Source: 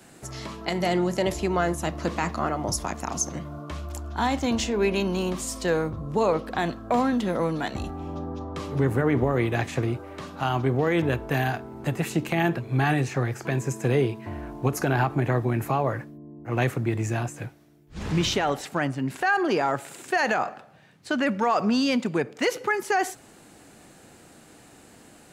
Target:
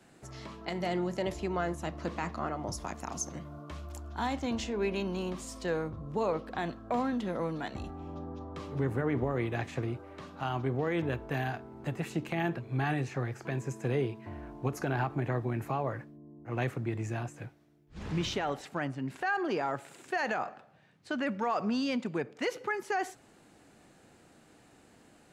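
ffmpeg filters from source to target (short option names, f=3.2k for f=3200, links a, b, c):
-af "asetnsamples=n=441:p=0,asendcmd='2.83 highshelf g -2.5;4.33 highshelf g -9.5',highshelf=f=7.6k:g=-11,volume=-8dB"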